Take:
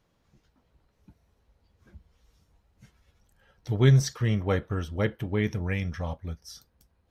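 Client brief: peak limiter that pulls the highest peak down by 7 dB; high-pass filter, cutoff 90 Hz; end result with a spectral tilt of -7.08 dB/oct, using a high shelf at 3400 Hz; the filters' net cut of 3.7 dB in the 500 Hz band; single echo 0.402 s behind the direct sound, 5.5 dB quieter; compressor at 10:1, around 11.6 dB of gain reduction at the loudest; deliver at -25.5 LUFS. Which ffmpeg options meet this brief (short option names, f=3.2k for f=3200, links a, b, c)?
-af "highpass=90,equalizer=f=500:t=o:g=-4.5,highshelf=f=3.4k:g=-9,acompressor=threshold=-27dB:ratio=10,alimiter=level_in=1.5dB:limit=-24dB:level=0:latency=1,volume=-1.5dB,aecho=1:1:402:0.531,volume=11.5dB"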